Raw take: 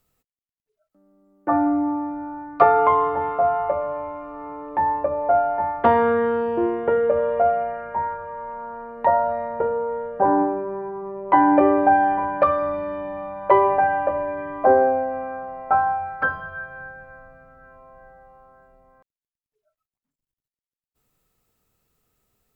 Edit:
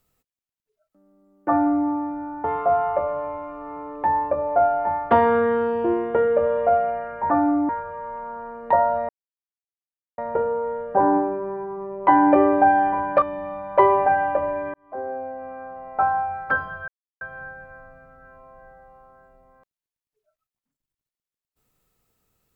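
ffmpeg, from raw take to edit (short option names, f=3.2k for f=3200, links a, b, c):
-filter_complex "[0:a]asplit=8[a][b][c][d][e][f][g][h];[a]atrim=end=2.442[i];[b]atrim=start=3.168:end=8.032[j];[c]atrim=start=1.478:end=1.872[k];[d]atrim=start=8.028:end=9.43,asetpts=PTS-STARTPTS,afade=t=out:st=1.398:d=0.004:c=hsin,apad=pad_dur=1.09[l];[e]atrim=start=9.43:end=12.472,asetpts=PTS-STARTPTS,afade=t=in:d=0.004:c=hsin[m];[f]atrim=start=12.938:end=14.46,asetpts=PTS-STARTPTS,afade=t=out:st=1.518:d=0.004:c=hsin[n];[g]atrim=start=14.46:end=16.6,asetpts=PTS-STARTPTS,afade=t=in:d=1.62,afade=t=out:st=2.136:d=0.004:c=hsin,apad=pad_dur=0.33[o];[h]atrim=start=16.6,asetpts=PTS-STARTPTS,afade=t=in:d=0.004:c=hsin[p];[i][j]acrossfade=d=0.004:c1=hsin:c2=hsin[q];[q][k]acrossfade=d=0.004:c1=hsin:c2=hsin[r];[l][m]concat=n=2:v=0:a=1[s];[r][s]acrossfade=d=0.004:c1=hsin:c2=hsin[t];[n][o][p]concat=n=3:v=0:a=1[u];[t][u]acrossfade=d=0.004:c1=hsin:c2=hsin"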